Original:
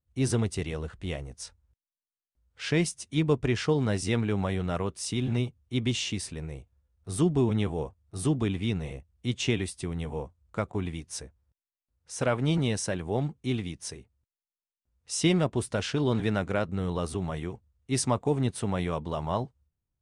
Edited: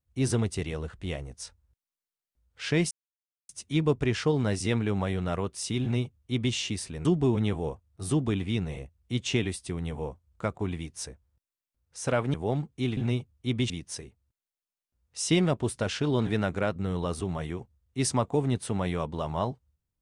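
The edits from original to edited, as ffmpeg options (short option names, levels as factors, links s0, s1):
-filter_complex "[0:a]asplit=6[s0][s1][s2][s3][s4][s5];[s0]atrim=end=2.91,asetpts=PTS-STARTPTS,afade=t=out:st=2.906:d=0.004:c=hsin,apad=pad_dur=0.58[s6];[s1]atrim=start=2.91:end=6.472,asetpts=PTS-STARTPTS,afade=t=in:d=0.004:c=hsin[s7];[s2]atrim=start=7.188:end=12.482[s8];[s3]atrim=start=12.998:end=13.632[s9];[s4]atrim=start=5.238:end=5.972[s10];[s5]atrim=start=13.628[s11];[s6][s7]concat=n=2:v=0:a=1[s12];[s12][s8]acrossfade=d=0.004:c1=hsin:c2=hsin[s13];[s13][s9]acrossfade=d=0.004:c1=hsin:c2=hsin[s14];[s14][s10]acrossfade=d=0.004:c1=hsin:c2=hsin[s15];[s15][s11]acrossfade=d=0.004:c1=hsin:c2=hsin"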